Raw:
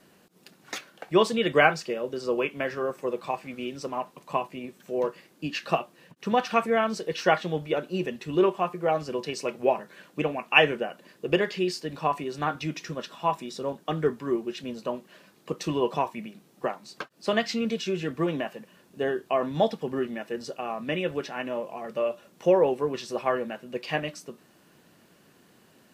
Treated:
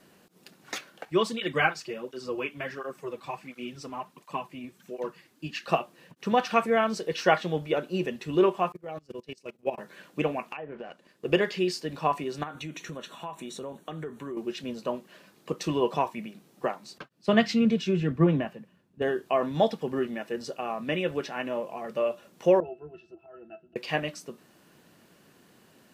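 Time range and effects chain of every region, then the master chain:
1.05–5.68 s: peaking EQ 540 Hz -6 dB 1.1 oct + cancelling through-zero flanger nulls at 1.4 Hz, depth 6.2 ms
8.72–9.78 s: peaking EQ 990 Hz -6.5 dB 2.3 oct + level held to a coarse grid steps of 12 dB + gate -38 dBFS, range -16 dB
10.52–11.25 s: companding laws mixed up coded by A + low-pass that closes with the level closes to 1 kHz, closed at -16.5 dBFS + compression 8:1, threshold -35 dBFS
12.43–14.37 s: peaking EQ 9 kHz +4.5 dB 0.53 oct + compression 5:1, threshold -34 dBFS + Butterworth band-stop 5 kHz, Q 4.4
16.98–19.02 s: tone controls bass +11 dB, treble -6 dB + three bands expanded up and down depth 70%
22.60–23.76 s: peaking EQ 200 Hz -5.5 dB 0.76 oct + slow attack 181 ms + pitch-class resonator E, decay 0.12 s
whole clip: none

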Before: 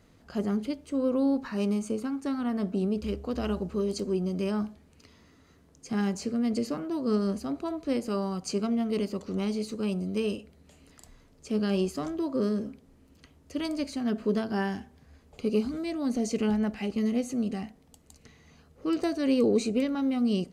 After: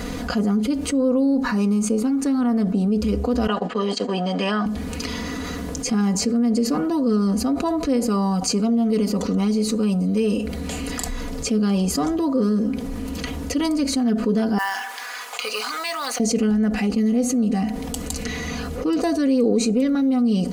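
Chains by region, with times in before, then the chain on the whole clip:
3.47–4.66 s: gate -34 dBFS, range -19 dB + cabinet simulation 360–7100 Hz, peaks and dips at 410 Hz -4 dB, 720 Hz +6 dB, 1.1 kHz +4 dB, 1.8 kHz +10 dB, 3.1 kHz +10 dB, 6 kHz -8 dB
14.58–16.20 s: ladder high-pass 850 Hz, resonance 25% + short-mantissa float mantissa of 2-bit
whole clip: dynamic bell 2.7 kHz, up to -5 dB, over -51 dBFS, Q 1; comb 4.1 ms, depth 76%; level flattener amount 70%

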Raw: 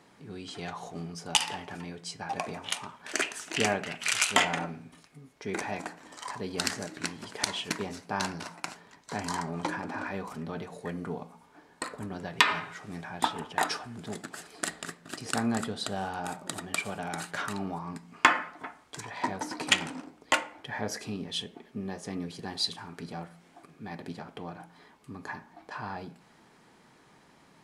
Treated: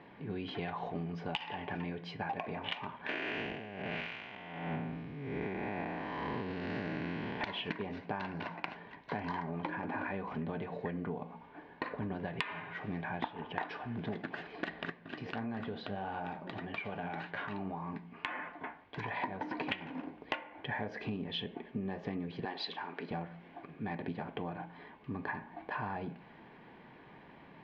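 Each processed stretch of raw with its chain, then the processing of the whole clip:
3.09–7.41 s: spectral blur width 313 ms + bass shelf 480 Hz +4.5 dB + compressor with a negative ratio -38 dBFS, ratio -0.5
14.90–18.98 s: compression 2:1, threshold -35 dBFS + flange 1.7 Hz, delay 6.5 ms, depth 7.1 ms, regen +67%
22.45–23.11 s: upward compressor, threshold -41 dBFS + high-pass 370 Hz
whole clip: inverse Chebyshev low-pass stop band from 8.9 kHz, stop band 60 dB; band-stop 1.3 kHz, Q 5.5; compression 16:1, threshold -38 dBFS; trim +4.5 dB

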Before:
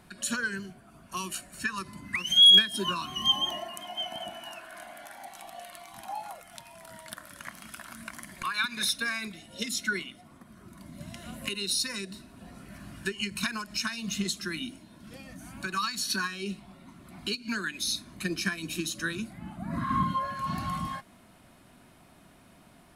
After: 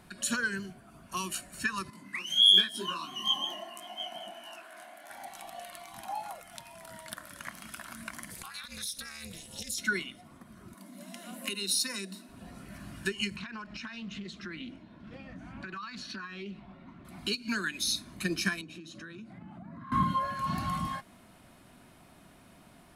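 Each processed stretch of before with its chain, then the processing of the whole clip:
1.90–5.10 s: Chebyshev high-pass 250 Hz + detune thickener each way 51 cents
8.30–9.78 s: compression 8:1, threshold -39 dBFS + AM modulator 300 Hz, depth 95% + tone controls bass +5 dB, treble +14 dB
10.74–12.29 s: rippled Chebyshev high-pass 180 Hz, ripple 3 dB + treble shelf 8.3 kHz +7.5 dB
13.36–17.05 s: low-pass 2.7 kHz + compression 8:1, threshold -37 dBFS + loudspeaker Doppler distortion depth 0.14 ms
18.61–19.92 s: tape spacing loss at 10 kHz 20 dB + compression 8:1, threshold -42 dBFS + high-pass 100 Hz
whole clip: none

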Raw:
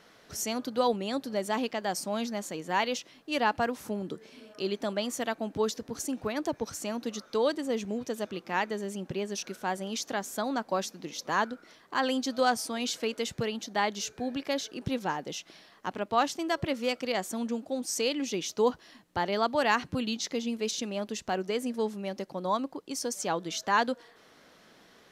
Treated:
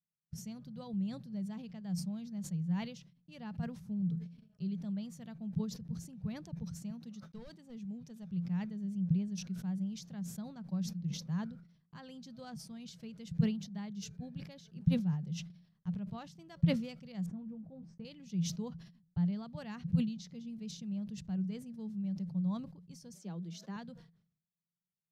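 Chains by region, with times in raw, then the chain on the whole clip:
6.90–8.27 s: bass shelf 280 Hz -10 dB + overload inside the chain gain 26.5 dB + small resonant body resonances 250/800 Hz, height 7 dB, ringing for 70 ms
17.26–18.05 s: low-pass 1.4 kHz + doubling 19 ms -8 dB
23.14–23.76 s: steep high-pass 200 Hz 48 dB/octave + peaking EQ 380 Hz +8 dB 0.71 oct
whole clip: gate -45 dBFS, range -38 dB; FFT filter 110 Hz 0 dB, 170 Hz +14 dB, 270 Hz -23 dB, 1.2 kHz -27 dB, 5 kHz -22 dB, 7.2 kHz -26 dB; decay stretcher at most 89 dB/s

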